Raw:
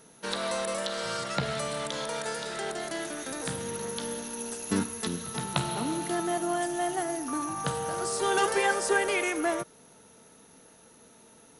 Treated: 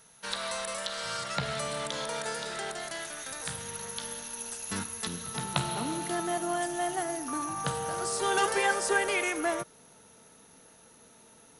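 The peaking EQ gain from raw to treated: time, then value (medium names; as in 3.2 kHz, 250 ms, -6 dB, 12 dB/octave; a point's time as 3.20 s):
peaking EQ 310 Hz 1.7 oct
0.92 s -15 dB
1.73 s -3.5 dB
2.48 s -3.5 dB
3.07 s -15 dB
4.73 s -15 dB
5.45 s -3.5 dB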